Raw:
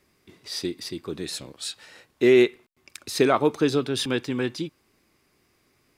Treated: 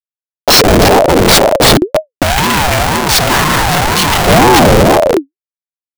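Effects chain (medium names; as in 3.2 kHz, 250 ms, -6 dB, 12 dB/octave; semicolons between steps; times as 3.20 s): high-pass 58 Hz 12 dB/octave; peaking EQ 320 Hz -8 dB 1 oct; spring tank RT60 2.5 s, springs 36 ms, chirp 35 ms, DRR 0.5 dB; rotary cabinet horn 5 Hz; Schmitt trigger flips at -36 dBFS; 2.23–4.27 s: bass shelf 230 Hz -11.5 dB; loudness maximiser +28 dB; ring modulator with a swept carrier 450 Hz, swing 40%, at 2 Hz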